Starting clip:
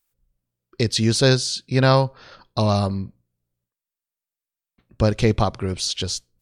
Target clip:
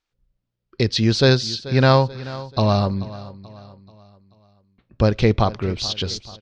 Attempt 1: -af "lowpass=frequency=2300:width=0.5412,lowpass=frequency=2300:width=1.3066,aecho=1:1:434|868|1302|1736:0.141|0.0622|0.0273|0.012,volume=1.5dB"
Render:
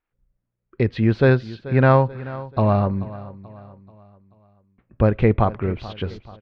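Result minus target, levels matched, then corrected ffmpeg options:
4,000 Hz band −17.0 dB
-af "lowpass=frequency=5200:width=0.5412,lowpass=frequency=5200:width=1.3066,aecho=1:1:434|868|1302|1736:0.141|0.0622|0.0273|0.012,volume=1.5dB"

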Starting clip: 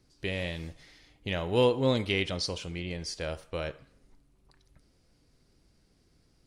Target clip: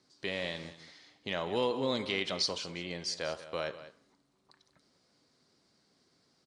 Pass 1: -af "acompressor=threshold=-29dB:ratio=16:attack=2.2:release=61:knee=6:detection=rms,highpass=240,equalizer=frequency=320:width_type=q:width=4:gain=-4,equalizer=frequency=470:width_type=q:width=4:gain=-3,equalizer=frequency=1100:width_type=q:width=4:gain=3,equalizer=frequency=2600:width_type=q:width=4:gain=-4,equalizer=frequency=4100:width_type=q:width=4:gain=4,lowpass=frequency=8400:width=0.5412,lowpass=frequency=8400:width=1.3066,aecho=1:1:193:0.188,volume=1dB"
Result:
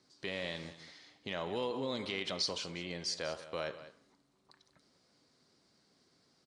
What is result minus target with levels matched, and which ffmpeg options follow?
downward compressor: peak gain reduction +6 dB
-af "acompressor=threshold=-22.5dB:ratio=16:attack=2.2:release=61:knee=6:detection=rms,highpass=240,equalizer=frequency=320:width_type=q:width=4:gain=-4,equalizer=frequency=470:width_type=q:width=4:gain=-3,equalizer=frequency=1100:width_type=q:width=4:gain=3,equalizer=frequency=2600:width_type=q:width=4:gain=-4,equalizer=frequency=4100:width_type=q:width=4:gain=4,lowpass=frequency=8400:width=0.5412,lowpass=frequency=8400:width=1.3066,aecho=1:1:193:0.188,volume=1dB"

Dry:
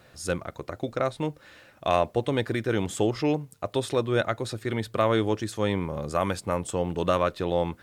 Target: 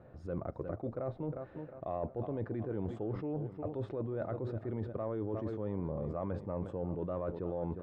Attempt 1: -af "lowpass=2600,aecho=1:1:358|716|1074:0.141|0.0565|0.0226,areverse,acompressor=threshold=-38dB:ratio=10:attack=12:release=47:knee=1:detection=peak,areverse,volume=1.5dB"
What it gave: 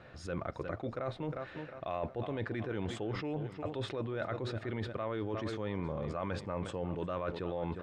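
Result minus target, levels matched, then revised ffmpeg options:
2,000 Hz band +12.0 dB
-af "lowpass=740,aecho=1:1:358|716|1074:0.141|0.0565|0.0226,areverse,acompressor=threshold=-38dB:ratio=10:attack=12:release=47:knee=1:detection=peak,areverse,volume=1.5dB"

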